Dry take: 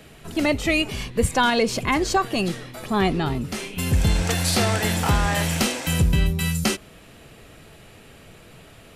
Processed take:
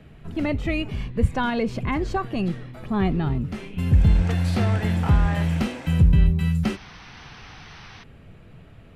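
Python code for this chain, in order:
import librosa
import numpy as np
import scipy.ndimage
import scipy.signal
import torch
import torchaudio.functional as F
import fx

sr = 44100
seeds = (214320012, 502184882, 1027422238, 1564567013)

y = fx.spec_paint(x, sr, seeds[0], shape='noise', start_s=6.63, length_s=1.41, low_hz=700.0, high_hz=6300.0, level_db=-36.0)
y = fx.bass_treble(y, sr, bass_db=10, treble_db=-15)
y = y * librosa.db_to_amplitude(-6.0)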